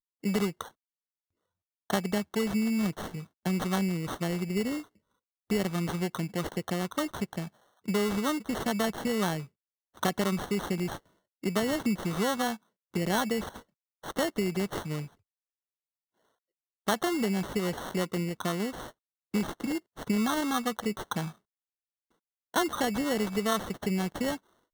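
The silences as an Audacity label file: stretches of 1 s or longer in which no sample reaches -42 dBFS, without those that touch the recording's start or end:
0.680000	1.900000	silence
15.070000	16.870000	silence
21.310000	22.540000	silence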